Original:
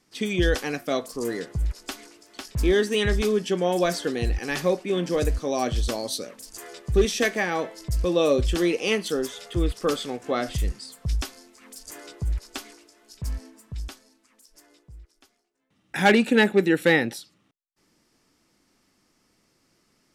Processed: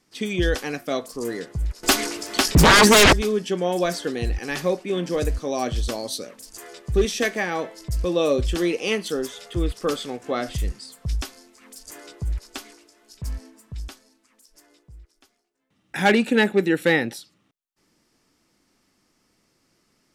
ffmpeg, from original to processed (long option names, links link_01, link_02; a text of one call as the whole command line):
ffmpeg -i in.wav -filter_complex "[0:a]asettb=1/sr,asplit=3[link_01][link_02][link_03];[link_01]atrim=end=1.834[link_04];[link_02]atrim=start=1.83:end=3.13,asetpts=PTS-STARTPTS,afade=type=in:duration=0.004:curve=qsin,afade=type=out:start_time=1.296:duration=0.004:curve=qsin,aeval=exprs='0.355*sin(PI/2*6.31*val(0)/0.355)':channel_layout=same[link_05];[link_03]atrim=start=3.126[link_06];[link_04][link_05]acrossfade=duration=0.004:curve1=hsin:curve2=qsin[link_07];[link_07][link_06]acrossfade=duration=0.004:curve1=qsin:curve2=hsin" out.wav